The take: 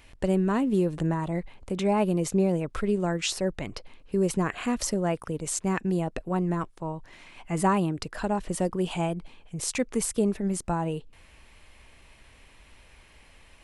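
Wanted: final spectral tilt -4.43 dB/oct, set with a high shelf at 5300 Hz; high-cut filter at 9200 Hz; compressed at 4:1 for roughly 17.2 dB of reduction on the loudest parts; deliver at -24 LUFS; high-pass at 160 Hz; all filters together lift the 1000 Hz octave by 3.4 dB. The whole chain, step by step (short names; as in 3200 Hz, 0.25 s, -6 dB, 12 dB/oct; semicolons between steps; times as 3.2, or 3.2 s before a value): HPF 160 Hz; LPF 9200 Hz; bell 1000 Hz +4 dB; high shelf 5300 Hz +3.5 dB; compressor 4:1, threshold -38 dBFS; gain +16 dB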